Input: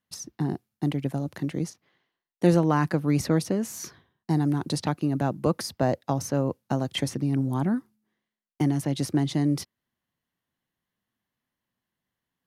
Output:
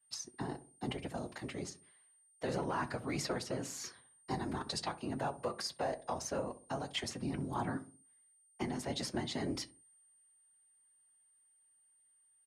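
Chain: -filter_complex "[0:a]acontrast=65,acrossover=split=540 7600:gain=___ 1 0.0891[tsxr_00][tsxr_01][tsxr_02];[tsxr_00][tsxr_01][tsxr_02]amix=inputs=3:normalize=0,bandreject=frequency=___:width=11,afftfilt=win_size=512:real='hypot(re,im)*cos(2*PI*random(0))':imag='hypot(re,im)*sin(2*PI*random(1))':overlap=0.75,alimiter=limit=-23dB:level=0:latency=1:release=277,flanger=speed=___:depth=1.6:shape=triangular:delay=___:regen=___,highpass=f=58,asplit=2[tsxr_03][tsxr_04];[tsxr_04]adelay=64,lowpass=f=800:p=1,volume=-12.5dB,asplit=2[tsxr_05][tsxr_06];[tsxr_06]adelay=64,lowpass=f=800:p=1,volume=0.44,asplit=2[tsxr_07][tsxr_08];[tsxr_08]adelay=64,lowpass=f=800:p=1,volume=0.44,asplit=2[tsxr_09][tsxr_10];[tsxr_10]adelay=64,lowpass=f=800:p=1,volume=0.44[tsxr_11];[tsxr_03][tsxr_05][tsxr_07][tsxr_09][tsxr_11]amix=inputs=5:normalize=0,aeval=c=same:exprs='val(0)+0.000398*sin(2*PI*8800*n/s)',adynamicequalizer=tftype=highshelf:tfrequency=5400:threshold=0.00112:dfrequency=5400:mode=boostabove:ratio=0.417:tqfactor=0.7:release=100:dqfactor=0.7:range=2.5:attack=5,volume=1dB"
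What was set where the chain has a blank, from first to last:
0.251, 5900, 1.9, 6.9, 63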